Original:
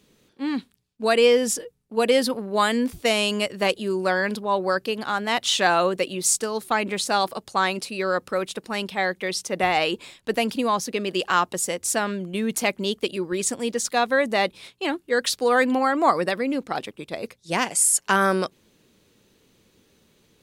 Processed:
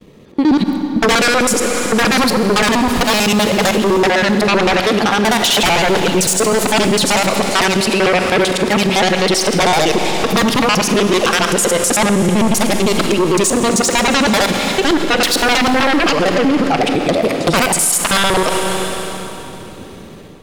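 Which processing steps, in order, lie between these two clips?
time reversed locally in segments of 64 ms; gate with hold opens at -54 dBFS; treble shelf 2.7 kHz -6.5 dB; band-stop 1.5 kHz, Q 6.5; level rider gain up to 8.5 dB; sine folder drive 11 dB, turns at -5.5 dBFS; Schroeder reverb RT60 3.4 s, combs from 33 ms, DRR 8.5 dB; loudness maximiser +10 dB; tape noise reduction on one side only decoder only; trim -6 dB

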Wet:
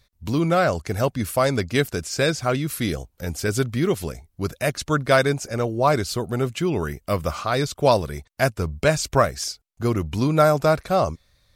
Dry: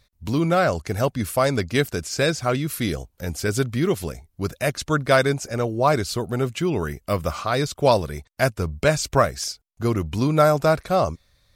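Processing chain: wow and flutter 21 cents

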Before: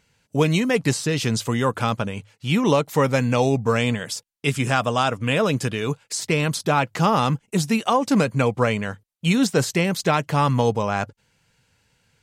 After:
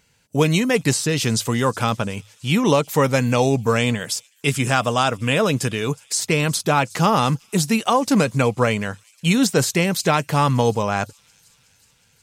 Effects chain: treble shelf 6.3 kHz +7 dB; feedback echo behind a high-pass 367 ms, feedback 66%, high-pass 4.9 kHz, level -19.5 dB; trim +1.5 dB

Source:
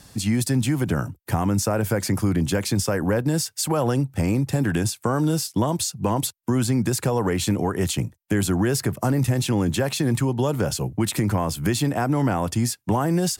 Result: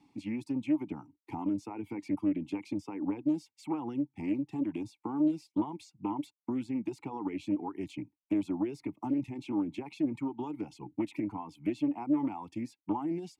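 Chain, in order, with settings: reverb removal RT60 1.1 s; vowel filter u; loudspeaker Doppler distortion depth 0.17 ms

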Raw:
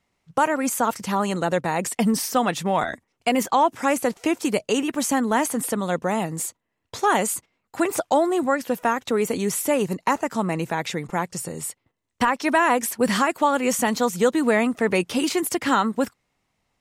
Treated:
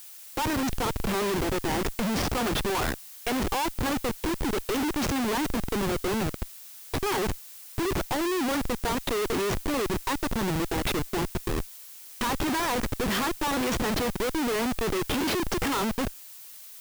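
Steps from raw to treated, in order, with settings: cabinet simulation 220–5800 Hz, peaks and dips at 380 Hz +10 dB, 640 Hz -10 dB, 3.3 kHz +6 dB; Schmitt trigger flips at -29 dBFS; added noise blue -42 dBFS; trim -3.5 dB

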